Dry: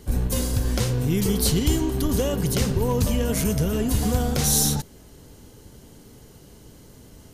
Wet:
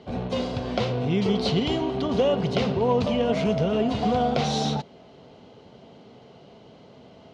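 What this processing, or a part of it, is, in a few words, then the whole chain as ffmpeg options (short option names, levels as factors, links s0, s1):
kitchen radio: -af "highpass=190,equalizer=f=310:t=q:w=4:g=-7,equalizer=f=680:t=q:w=4:g=9,equalizer=f=1700:t=q:w=4:g=-8,lowpass=f=3800:w=0.5412,lowpass=f=3800:w=1.3066,volume=1.41"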